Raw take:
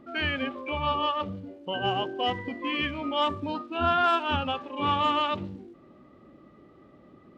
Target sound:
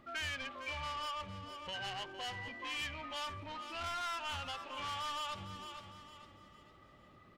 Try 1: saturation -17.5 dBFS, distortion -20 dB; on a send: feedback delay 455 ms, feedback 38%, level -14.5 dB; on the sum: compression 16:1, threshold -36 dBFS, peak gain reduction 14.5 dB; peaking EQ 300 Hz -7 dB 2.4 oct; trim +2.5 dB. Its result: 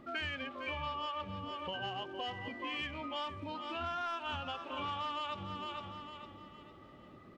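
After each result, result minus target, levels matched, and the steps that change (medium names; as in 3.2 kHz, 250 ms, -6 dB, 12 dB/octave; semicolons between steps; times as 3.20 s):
saturation: distortion -12 dB; 250 Hz band +6.5 dB
change: saturation -28.5 dBFS, distortion -8 dB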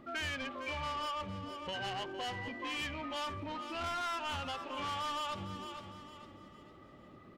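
250 Hz band +6.5 dB
change: peaking EQ 300 Hz -16.5 dB 2.4 oct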